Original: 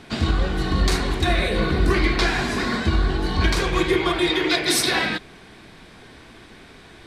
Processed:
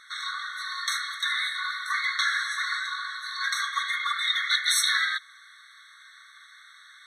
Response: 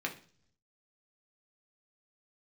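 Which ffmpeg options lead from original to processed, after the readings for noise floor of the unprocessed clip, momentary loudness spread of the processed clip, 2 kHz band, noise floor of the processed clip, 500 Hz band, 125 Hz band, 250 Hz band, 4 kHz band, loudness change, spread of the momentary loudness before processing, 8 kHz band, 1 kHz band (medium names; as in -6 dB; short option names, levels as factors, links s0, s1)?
-46 dBFS, 11 LU, -1.0 dB, -52 dBFS, under -40 dB, under -40 dB, under -40 dB, -1.5 dB, -5.0 dB, 5 LU, -2.0 dB, -5.0 dB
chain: -af "afftfilt=real='re*eq(mod(floor(b*sr/1024/1100),2),1)':imag='im*eq(mod(floor(b*sr/1024/1100),2),1)':win_size=1024:overlap=0.75"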